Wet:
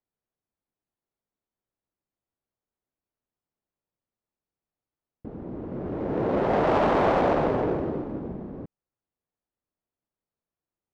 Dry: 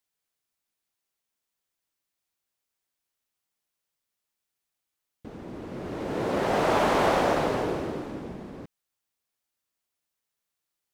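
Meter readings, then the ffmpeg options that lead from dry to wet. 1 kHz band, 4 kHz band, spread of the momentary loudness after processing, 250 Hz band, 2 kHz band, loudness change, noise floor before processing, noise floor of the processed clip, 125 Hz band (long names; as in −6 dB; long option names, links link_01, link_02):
+0.5 dB, −7.0 dB, 17 LU, +3.0 dB, −2.5 dB, +1.0 dB, −85 dBFS, below −85 dBFS, +3.5 dB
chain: -af "highshelf=frequency=3900:gain=11.5,asoftclip=type=tanh:threshold=-17dB,adynamicsmooth=sensitivity=0.5:basefreq=790,volume=4.5dB"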